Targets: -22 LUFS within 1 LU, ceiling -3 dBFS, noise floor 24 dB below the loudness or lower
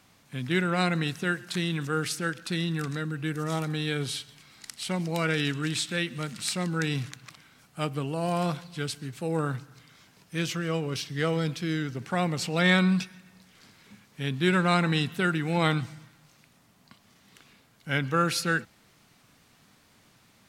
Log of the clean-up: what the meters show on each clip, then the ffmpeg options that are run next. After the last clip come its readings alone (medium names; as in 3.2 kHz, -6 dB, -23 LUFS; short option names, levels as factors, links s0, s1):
loudness -28.5 LUFS; peak level -8.0 dBFS; loudness target -22.0 LUFS
-> -af "volume=2.11,alimiter=limit=0.708:level=0:latency=1"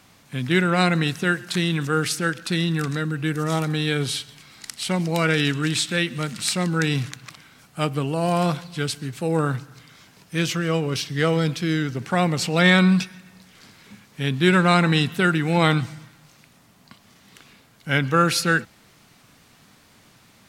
loudness -22.0 LUFS; peak level -3.0 dBFS; noise floor -55 dBFS